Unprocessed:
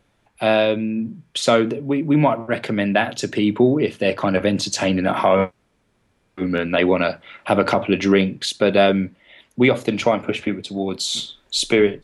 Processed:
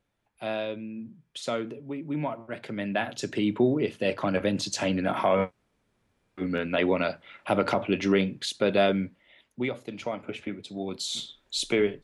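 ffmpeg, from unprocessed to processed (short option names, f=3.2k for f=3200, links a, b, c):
-af "volume=2dB,afade=t=in:st=2.58:d=0.72:silence=0.446684,afade=t=out:st=9.04:d=0.77:silence=0.298538,afade=t=in:st=9.81:d=1.26:silence=0.334965"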